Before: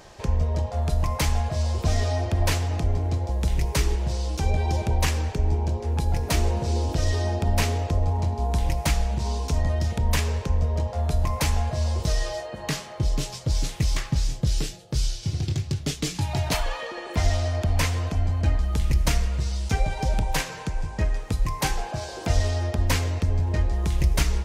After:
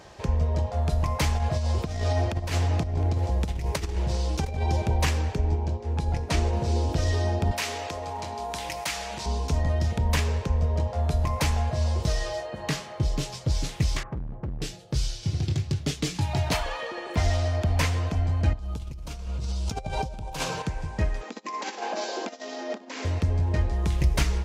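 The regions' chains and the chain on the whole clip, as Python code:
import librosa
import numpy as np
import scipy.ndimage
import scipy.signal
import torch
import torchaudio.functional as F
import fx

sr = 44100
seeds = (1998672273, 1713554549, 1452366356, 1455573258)

y = fx.chain(x, sr, fx.over_compress(threshold_db=-24.0, ratio=-0.5),
    fx.echo_single(ms=713, db=-18.0), at=(1.37, 4.64))
y = fx.chain(y, sr, fx.lowpass(hz=9000.0, slope=12),
    fx.upward_expand(threshold_db=-31.0, expansion=1.5), at=(5.4, 6.53))
y = fx.chain(y, sr, fx.highpass(hz=1400.0, slope=6),
    fx.env_flatten(amount_pct=50), at=(7.51, 9.26))
y = fx.chain(y, sr, fx.lowpass(hz=1300.0, slope=24),
    fx.clip_hard(threshold_db=-28.0), at=(14.03, 14.62))
y = fx.chain(y, sr, fx.peak_eq(hz=1900.0, db=-12.0, octaves=0.39),
    fx.over_compress(threshold_db=-30.0, ratio=-1.0), at=(18.53, 20.62))
y = fx.chain(y, sr, fx.room_flutter(wall_m=10.6, rt60_s=0.33),
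    fx.over_compress(threshold_db=-29.0, ratio=-1.0),
    fx.brickwall_bandpass(low_hz=200.0, high_hz=7700.0), at=(21.21, 23.05))
y = scipy.signal.sosfilt(scipy.signal.butter(2, 44.0, 'highpass', fs=sr, output='sos'), y)
y = fx.high_shelf(y, sr, hz=7500.0, db=-7.0)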